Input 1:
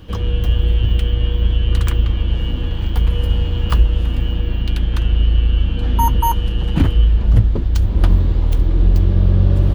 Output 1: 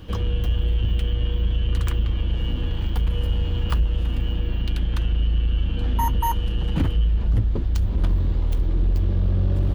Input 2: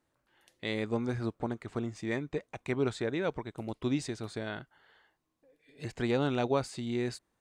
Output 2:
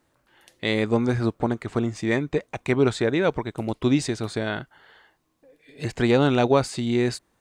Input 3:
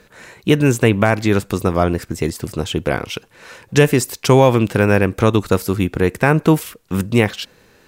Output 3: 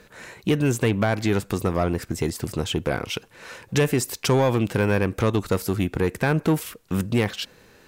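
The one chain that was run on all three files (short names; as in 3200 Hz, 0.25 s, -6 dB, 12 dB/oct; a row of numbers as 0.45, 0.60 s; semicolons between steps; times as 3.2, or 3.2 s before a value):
in parallel at +1 dB: compressor, threshold -20 dBFS; on the sum: soft clip -4.5 dBFS; match loudness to -24 LUFS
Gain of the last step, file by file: -8.0, +4.0, -8.0 dB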